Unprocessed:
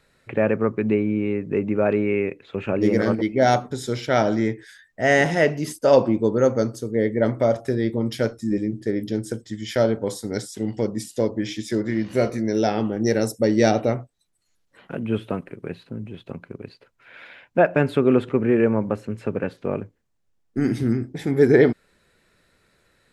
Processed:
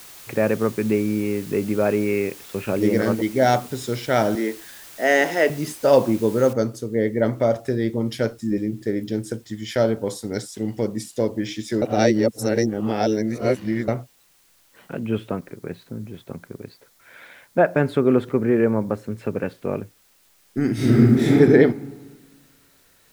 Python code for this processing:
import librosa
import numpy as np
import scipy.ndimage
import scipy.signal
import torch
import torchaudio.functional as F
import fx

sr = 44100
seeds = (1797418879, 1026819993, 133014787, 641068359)

y = fx.peak_eq(x, sr, hz=9500.0, db=-8.0, octaves=0.31, at=(0.76, 2.25))
y = fx.highpass(y, sr, hz=250.0, slope=24, at=(4.35, 5.5))
y = fx.noise_floor_step(y, sr, seeds[0], at_s=6.53, before_db=-43, after_db=-59, tilt_db=0.0)
y = fx.peak_eq(y, sr, hz=2700.0, db=-7.0, octaves=0.33, at=(15.29, 19.19))
y = fx.reverb_throw(y, sr, start_s=20.73, length_s=0.6, rt60_s=1.4, drr_db=-10.0)
y = fx.edit(y, sr, fx.reverse_span(start_s=11.82, length_s=2.06), tone=tone)